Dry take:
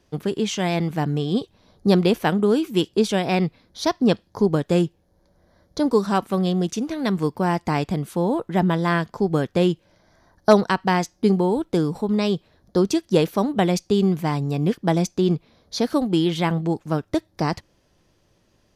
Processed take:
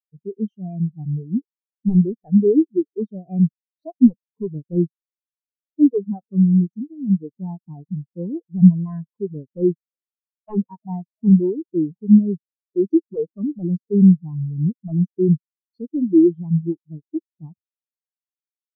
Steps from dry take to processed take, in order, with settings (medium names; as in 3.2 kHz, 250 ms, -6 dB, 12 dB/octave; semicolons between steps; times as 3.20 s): band-passed feedback delay 343 ms, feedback 72%, band-pass 1 kHz, level -23 dB; sine folder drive 12 dB, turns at -1.5 dBFS; spectral contrast expander 4:1